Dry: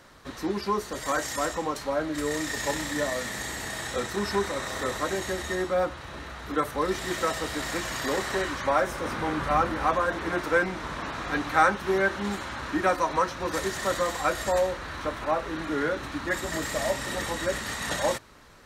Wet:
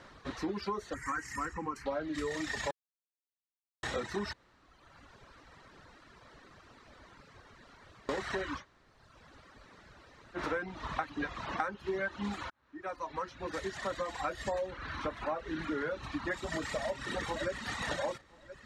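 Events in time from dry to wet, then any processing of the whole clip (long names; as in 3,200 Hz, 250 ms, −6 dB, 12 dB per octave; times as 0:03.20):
0:00.94–0:01.86: phaser with its sweep stopped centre 1,500 Hz, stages 4
0:02.71–0:03.83: silence
0:04.33–0:08.09: fill with room tone
0:08.61–0:10.39: fill with room tone, crossfade 0.10 s
0:10.99–0:11.60: reverse
0:12.50–0:14.71: fade in
0:16.80–0:17.70: delay throw 510 ms, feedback 45%, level −11 dB
whole clip: Bessel low-pass filter 4,500 Hz, order 2; reverb reduction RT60 1.3 s; downward compressor 6 to 1, threshold −32 dBFS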